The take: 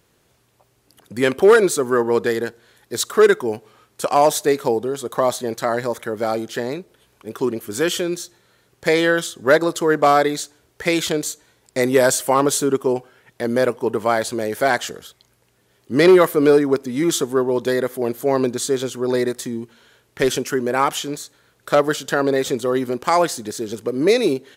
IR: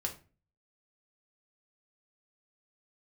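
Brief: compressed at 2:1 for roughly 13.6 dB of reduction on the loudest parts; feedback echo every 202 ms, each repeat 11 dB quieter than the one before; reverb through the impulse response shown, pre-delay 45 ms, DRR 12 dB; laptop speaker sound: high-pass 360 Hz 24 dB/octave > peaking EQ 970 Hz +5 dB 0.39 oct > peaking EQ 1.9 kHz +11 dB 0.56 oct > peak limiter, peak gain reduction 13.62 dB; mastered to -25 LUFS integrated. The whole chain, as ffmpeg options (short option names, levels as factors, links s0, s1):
-filter_complex "[0:a]acompressor=threshold=0.02:ratio=2,aecho=1:1:202|404|606:0.282|0.0789|0.0221,asplit=2[s0][s1];[1:a]atrim=start_sample=2205,adelay=45[s2];[s1][s2]afir=irnorm=-1:irlink=0,volume=0.211[s3];[s0][s3]amix=inputs=2:normalize=0,highpass=f=360:w=0.5412,highpass=f=360:w=1.3066,equalizer=f=970:t=o:w=0.39:g=5,equalizer=f=1900:t=o:w=0.56:g=11,volume=2.51,alimiter=limit=0.178:level=0:latency=1"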